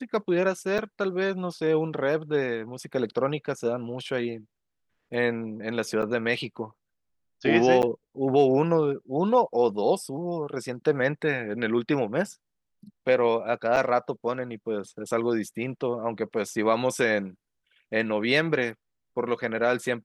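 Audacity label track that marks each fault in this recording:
0.780000	0.790000	gap 6.4 ms
6.020000	6.030000	gap 6.7 ms
7.820000	7.830000	gap 9.3 ms
13.760000	13.770000	gap 6.8 ms

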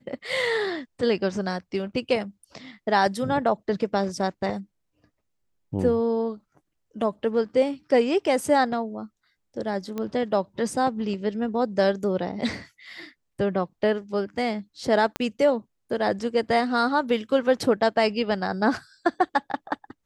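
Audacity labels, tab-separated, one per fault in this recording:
9.980000	9.980000	pop -18 dBFS
15.160000	15.160000	pop -13 dBFS

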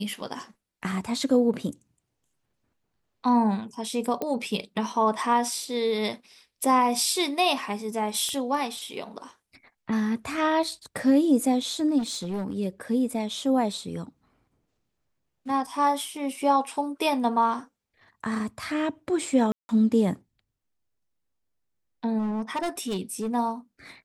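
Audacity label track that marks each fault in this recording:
4.220000	4.220000	pop -16 dBFS
8.290000	8.290000	pop -18 dBFS
11.980000	12.550000	clipped -26 dBFS
19.520000	19.690000	gap 0.17 s
22.180000	23.300000	clipped -24.5 dBFS

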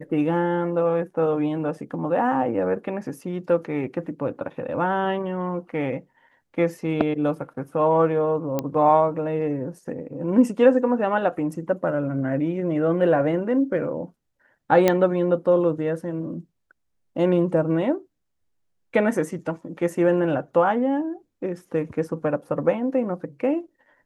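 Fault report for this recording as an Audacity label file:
8.590000	8.590000	pop -11 dBFS
14.880000	14.880000	pop -5 dBFS

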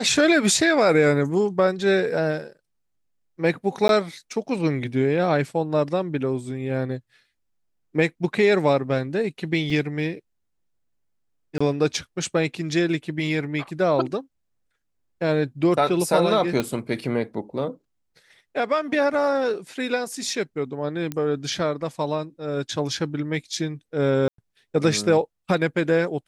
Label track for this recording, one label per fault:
3.880000	3.890000	gap 12 ms
9.700000	9.700000	gap 2.5 ms
11.580000	11.610000	gap 25 ms
16.600000	16.600000	pop -10 dBFS
21.120000	21.120000	pop -14 dBFS
24.280000	24.380000	gap 0.103 s

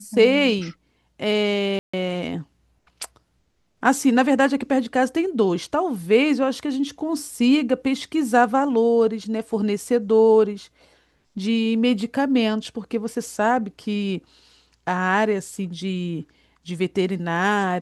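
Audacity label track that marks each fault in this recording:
1.790000	1.940000	gap 0.145 s

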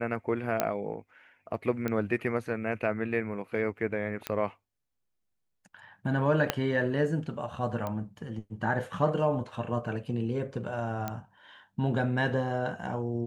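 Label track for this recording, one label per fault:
0.600000	0.600000	pop -10 dBFS
1.880000	1.880000	pop -18 dBFS
4.270000	4.270000	pop -15 dBFS
6.500000	6.500000	pop -9 dBFS
7.870000	7.870000	pop -21 dBFS
11.080000	11.080000	pop -18 dBFS

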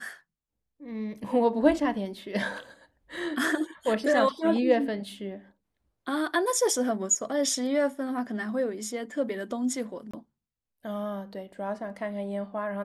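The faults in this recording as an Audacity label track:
10.110000	10.130000	gap 25 ms

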